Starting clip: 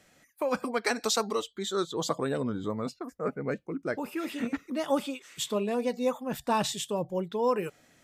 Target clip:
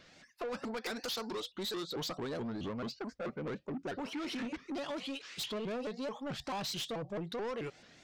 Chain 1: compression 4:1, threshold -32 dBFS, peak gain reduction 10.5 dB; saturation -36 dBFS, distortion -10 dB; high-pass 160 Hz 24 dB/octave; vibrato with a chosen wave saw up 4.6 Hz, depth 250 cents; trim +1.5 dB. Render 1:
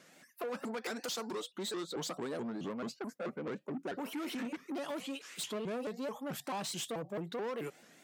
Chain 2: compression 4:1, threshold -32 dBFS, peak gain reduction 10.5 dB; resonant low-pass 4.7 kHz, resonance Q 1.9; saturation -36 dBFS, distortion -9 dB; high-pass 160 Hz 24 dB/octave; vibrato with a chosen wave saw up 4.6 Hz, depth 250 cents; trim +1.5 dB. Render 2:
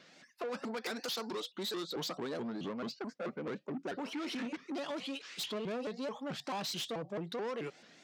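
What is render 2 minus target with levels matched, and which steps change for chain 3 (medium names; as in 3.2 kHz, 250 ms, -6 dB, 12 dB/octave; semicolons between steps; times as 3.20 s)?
125 Hz band -3.0 dB
remove: high-pass 160 Hz 24 dB/octave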